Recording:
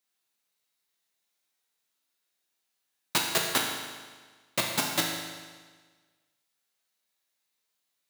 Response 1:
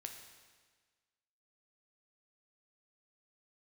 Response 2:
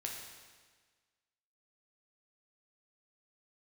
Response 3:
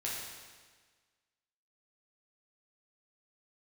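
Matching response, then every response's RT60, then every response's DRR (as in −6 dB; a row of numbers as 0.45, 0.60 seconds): 2; 1.5, 1.5, 1.5 seconds; 3.5, −0.5, −6.0 decibels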